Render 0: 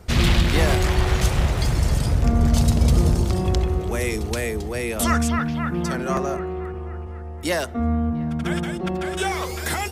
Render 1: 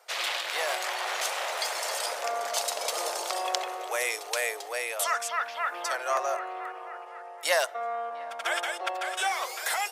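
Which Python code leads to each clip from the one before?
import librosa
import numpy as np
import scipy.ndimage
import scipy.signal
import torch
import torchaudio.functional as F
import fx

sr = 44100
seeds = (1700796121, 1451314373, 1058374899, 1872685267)

y = scipy.signal.sosfilt(scipy.signal.butter(6, 550.0, 'highpass', fs=sr, output='sos'), x)
y = fx.rider(y, sr, range_db=4, speed_s=0.5)
y = F.gain(torch.from_numpy(y), -1.0).numpy()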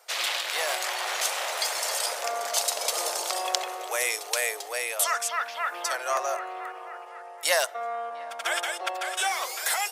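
y = fx.high_shelf(x, sr, hz=4100.0, db=6.5)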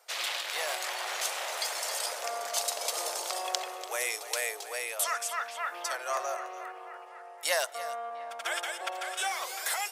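y = x + 10.0 ** (-14.5 / 20.0) * np.pad(x, (int(289 * sr / 1000.0), 0))[:len(x)]
y = F.gain(torch.from_numpy(y), -5.0).numpy()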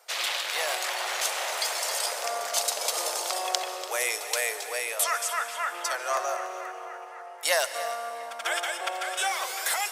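y = fx.rev_plate(x, sr, seeds[0], rt60_s=2.4, hf_ratio=0.95, predelay_ms=115, drr_db=11.5)
y = F.gain(torch.from_numpy(y), 4.0).numpy()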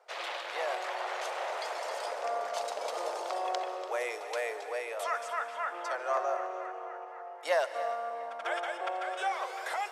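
y = fx.bandpass_q(x, sr, hz=470.0, q=0.56)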